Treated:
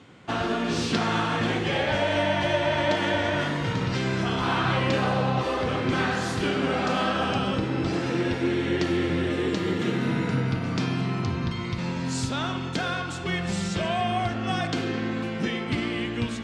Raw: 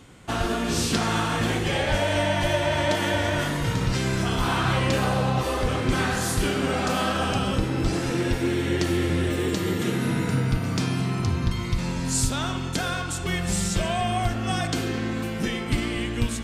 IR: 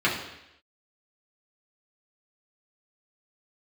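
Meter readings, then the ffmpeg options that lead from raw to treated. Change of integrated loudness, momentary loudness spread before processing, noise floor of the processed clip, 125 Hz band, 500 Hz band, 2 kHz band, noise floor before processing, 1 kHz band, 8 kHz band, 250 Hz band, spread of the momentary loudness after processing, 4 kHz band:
−1.0 dB, 4 LU, −31 dBFS, −3.0 dB, 0.0 dB, 0.0 dB, −30 dBFS, 0.0 dB, −10.0 dB, −0.5 dB, 5 LU, −1.5 dB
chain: -af "highpass=120,lowpass=4400"

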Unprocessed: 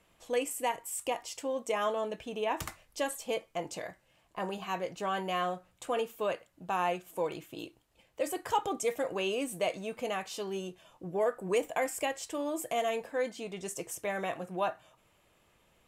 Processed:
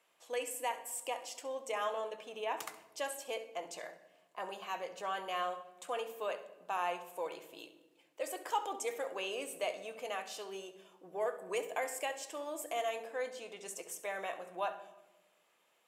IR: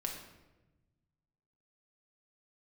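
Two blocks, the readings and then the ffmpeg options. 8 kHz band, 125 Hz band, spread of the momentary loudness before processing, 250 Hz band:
−4.0 dB, below −15 dB, 9 LU, −13.0 dB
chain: -filter_complex "[0:a]highpass=500,asplit=2[link_01][link_02];[1:a]atrim=start_sample=2205,lowshelf=frequency=410:gain=10.5,adelay=67[link_03];[link_02][link_03]afir=irnorm=-1:irlink=0,volume=-13.5dB[link_04];[link_01][link_04]amix=inputs=2:normalize=0,volume=-4dB"

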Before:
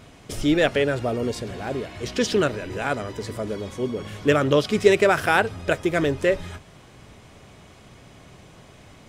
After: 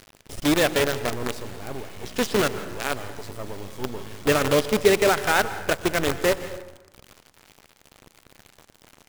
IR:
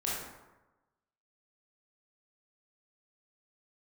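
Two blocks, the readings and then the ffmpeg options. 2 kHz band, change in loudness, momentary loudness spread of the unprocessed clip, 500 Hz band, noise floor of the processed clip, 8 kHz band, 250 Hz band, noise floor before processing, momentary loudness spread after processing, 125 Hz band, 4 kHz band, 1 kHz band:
−0.5 dB, −0.5 dB, 12 LU, −2.0 dB, −59 dBFS, +5.5 dB, −2.5 dB, −49 dBFS, 17 LU, −3.5 dB, +2.0 dB, −0.5 dB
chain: -filter_complex "[0:a]acrusher=bits=4:dc=4:mix=0:aa=0.000001,asplit=2[link_01][link_02];[1:a]atrim=start_sample=2205,asetrate=48510,aresample=44100,adelay=121[link_03];[link_02][link_03]afir=irnorm=-1:irlink=0,volume=-17.5dB[link_04];[link_01][link_04]amix=inputs=2:normalize=0,volume=-2dB"

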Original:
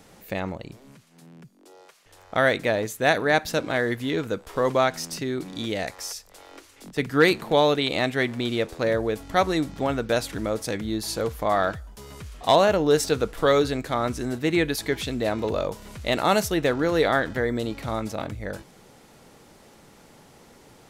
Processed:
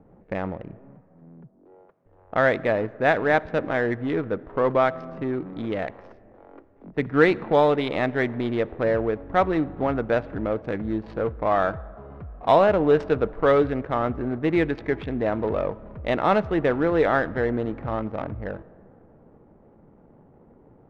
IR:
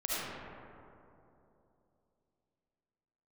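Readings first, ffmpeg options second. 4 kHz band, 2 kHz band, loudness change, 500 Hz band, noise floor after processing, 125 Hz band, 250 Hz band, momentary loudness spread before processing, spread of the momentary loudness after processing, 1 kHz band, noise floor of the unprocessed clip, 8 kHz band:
−10.5 dB, −1.0 dB, +0.5 dB, +1.5 dB, −55 dBFS, +0.5 dB, +1.0 dB, 12 LU, 12 LU, +1.0 dB, −53 dBFS, below −20 dB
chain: -filter_complex "[0:a]adynamicsmooth=sensitivity=4:basefreq=580,lowpass=2000,asplit=2[link_01][link_02];[1:a]atrim=start_sample=2205[link_03];[link_02][link_03]afir=irnorm=-1:irlink=0,volume=-27.5dB[link_04];[link_01][link_04]amix=inputs=2:normalize=0,volume=1dB"

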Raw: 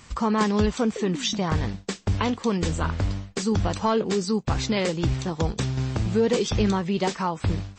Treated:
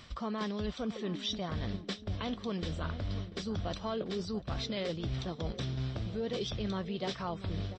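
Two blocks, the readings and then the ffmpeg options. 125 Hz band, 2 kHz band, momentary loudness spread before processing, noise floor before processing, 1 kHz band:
−11.0 dB, −12.0 dB, 5 LU, −48 dBFS, −13.5 dB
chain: -filter_complex "[0:a]superequalizer=8b=1.58:9b=0.631:13b=2:15b=0.251,areverse,acompressor=threshold=-34dB:ratio=6,areverse,asplit=2[link_01][link_02];[link_02]adelay=690,lowpass=frequency=1000:poles=1,volume=-12.5dB,asplit=2[link_03][link_04];[link_04]adelay=690,lowpass=frequency=1000:poles=1,volume=0.52,asplit=2[link_05][link_06];[link_06]adelay=690,lowpass=frequency=1000:poles=1,volume=0.52,asplit=2[link_07][link_08];[link_08]adelay=690,lowpass=frequency=1000:poles=1,volume=0.52,asplit=2[link_09][link_10];[link_10]adelay=690,lowpass=frequency=1000:poles=1,volume=0.52[link_11];[link_01][link_03][link_05][link_07][link_09][link_11]amix=inputs=6:normalize=0"

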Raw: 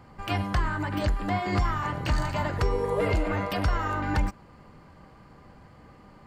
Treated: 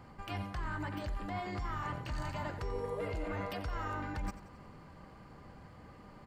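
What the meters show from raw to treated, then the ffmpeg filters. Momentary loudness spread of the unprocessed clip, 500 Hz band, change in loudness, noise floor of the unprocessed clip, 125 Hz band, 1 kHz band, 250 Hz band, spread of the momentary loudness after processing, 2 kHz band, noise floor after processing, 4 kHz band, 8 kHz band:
3 LU, −11.0 dB, −11.5 dB, −53 dBFS, −12.0 dB, −10.5 dB, −11.5 dB, 16 LU, −11.0 dB, −55 dBFS, −11.5 dB, −11.5 dB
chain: -af "areverse,acompressor=threshold=-33dB:ratio=6,areverse,aecho=1:1:89|178|267|356|445:0.188|0.0998|0.0529|0.028|0.0149,volume=-2.5dB"

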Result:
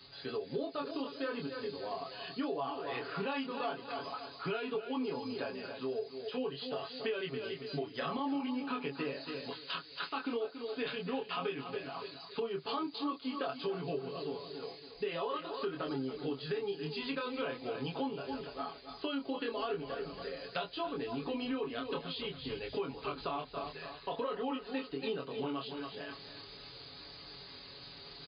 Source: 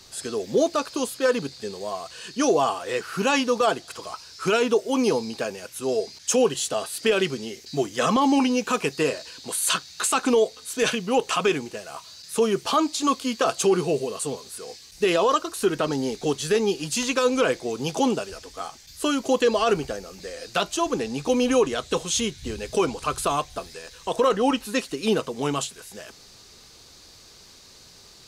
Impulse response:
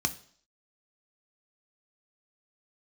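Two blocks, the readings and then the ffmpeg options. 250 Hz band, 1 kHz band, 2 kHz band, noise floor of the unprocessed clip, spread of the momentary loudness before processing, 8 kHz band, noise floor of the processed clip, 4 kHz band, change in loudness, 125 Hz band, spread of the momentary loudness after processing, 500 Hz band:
−13.0 dB, −13.5 dB, −13.0 dB, −50 dBFS, 13 LU, below −40 dB, −52 dBFS, −12.5 dB, −14.5 dB, −11.5 dB, 7 LU, −14.5 dB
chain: -af "bandreject=frequency=60:width_type=h:width=6,bandreject=frequency=120:width_type=h:width=6,aecho=1:1:7.1:0.75,areverse,acompressor=mode=upward:threshold=-32dB:ratio=2.5,areverse,flanger=delay=22.5:depth=3.4:speed=0.44,highpass=41,aecho=1:1:279|558|837:0.251|0.0854|0.029,acompressor=threshold=-30dB:ratio=4,volume=-4.5dB" -ar 11025 -c:a libmp3lame -b:a 64k

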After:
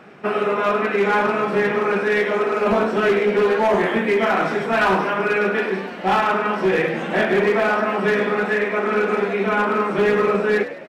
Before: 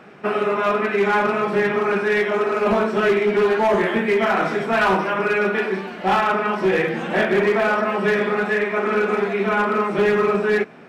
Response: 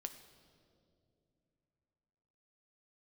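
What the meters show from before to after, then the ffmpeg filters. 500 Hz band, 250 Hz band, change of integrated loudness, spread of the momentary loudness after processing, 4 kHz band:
0.0 dB, 0.0 dB, +0.5 dB, 3 LU, +0.5 dB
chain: -filter_complex "[0:a]asplit=5[link_01][link_02][link_03][link_04][link_05];[link_02]adelay=103,afreqshift=69,volume=-13dB[link_06];[link_03]adelay=206,afreqshift=138,volume=-19.9dB[link_07];[link_04]adelay=309,afreqshift=207,volume=-26.9dB[link_08];[link_05]adelay=412,afreqshift=276,volume=-33.8dB[link_09];[link_01][link_06][link_07][link_08][link_09]amix=inputs=5:normalize=0"

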